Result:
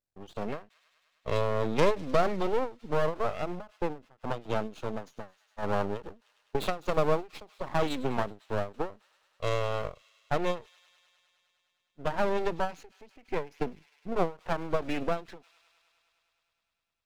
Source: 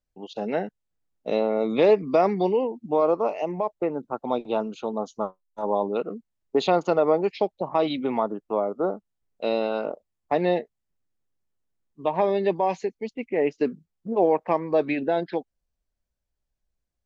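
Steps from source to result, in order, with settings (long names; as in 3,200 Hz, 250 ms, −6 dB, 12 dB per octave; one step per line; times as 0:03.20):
stylus tracing distortion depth 0.098 ms
high-pass filter 80 Hz 12 dB per octave
half-wave rectification
on a send: delay with a high-pass on its return 102 ms, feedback 82%, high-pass 3,200 Hz, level −17 dB
on the sum: every ending faded ahead of time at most 210 dB per second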